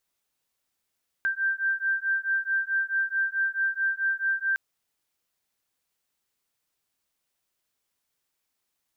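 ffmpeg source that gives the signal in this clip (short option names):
-f lavfi -i "aevalsrc='0.0447*(sin(2*PI*1570*t)+sin(2*PI*1574.6*t))':d=3.31:s=44100"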